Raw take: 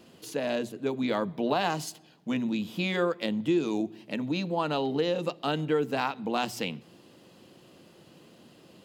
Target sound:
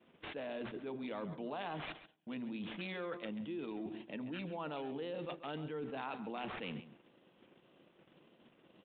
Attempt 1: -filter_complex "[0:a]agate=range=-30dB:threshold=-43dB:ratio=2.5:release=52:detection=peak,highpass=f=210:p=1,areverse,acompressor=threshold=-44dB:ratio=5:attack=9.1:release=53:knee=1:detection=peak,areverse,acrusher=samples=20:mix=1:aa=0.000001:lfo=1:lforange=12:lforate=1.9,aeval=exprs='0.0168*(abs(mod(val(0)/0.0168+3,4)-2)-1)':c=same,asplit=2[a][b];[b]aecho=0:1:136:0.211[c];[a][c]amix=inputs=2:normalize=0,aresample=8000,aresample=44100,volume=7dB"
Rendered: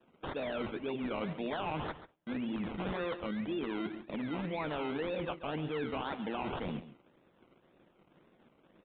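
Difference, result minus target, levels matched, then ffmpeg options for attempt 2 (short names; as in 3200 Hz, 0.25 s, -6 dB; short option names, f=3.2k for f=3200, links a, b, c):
compressor: peak gain reduction -6 dB; decimation with a swept rate: distortion +7 dB
-filter_complex "[0:a]agate=range=-30dB:threshold=-43dB:ratio=2.5:release=52:detection=peak,highpass=f=210:p=1,areverse,acompressor=threshold=-51.5dB:ratio=5:attack=9.1:release=53:knee=1:detection=peak,areverse,acrusher=samples=6:mix=1:aa=0.000001:lfo=1:lforange=3.6:lforate=1.9,aeval=exprs='0.0168*(abs(mod(val(0)/0.0168+3,4)-2)-1)':c=same,asplit=2[a][b];[b]aecho=0:1:136:0.211[c];[a][c]amix=inputs=2:normalize=0,aresample=8000,aresample=44100,volume=7dB"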